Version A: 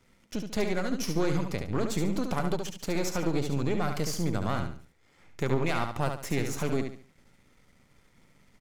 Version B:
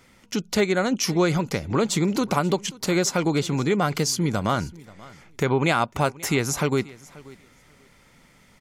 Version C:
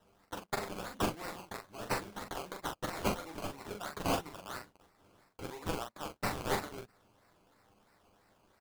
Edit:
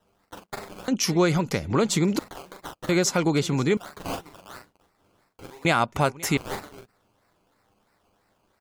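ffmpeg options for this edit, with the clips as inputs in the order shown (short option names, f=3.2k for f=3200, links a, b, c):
-filter_complex "[1:a]asplit=3[a][b][c];[2:a]asplit=4[d][e][f][g];[d]atrim=end=0.882[h];[a]atrim=start=0.878:end=2.192[i];[e]atrim=start=2.188:end=2.892[j];[b]atrim=start=2.888:end=3.772[k];[f]atrim=start=3.768:end=5.652[l];[c]atrim=start=5.648:end=6.372[m];[g]atrim=start=6.368[n];[h][i]acrossfade=d=0.004:c1=hsin:c2=hsin[o];[o][j]acrossfade=d=0.004:c1=hsin:c2=hsin[p];[p][k]acrossfade=d=0.004:c1=hsin:c2=hsin[q];[q][l]acrossfade=d=0.004:c1=hsin:c2=hsin[r];[r][m]acrossfade=d=0.004:c1=hsin:c2=hsin[s];[s][n]acrossfade=d=0.004:c1=hsin:c2=hsin"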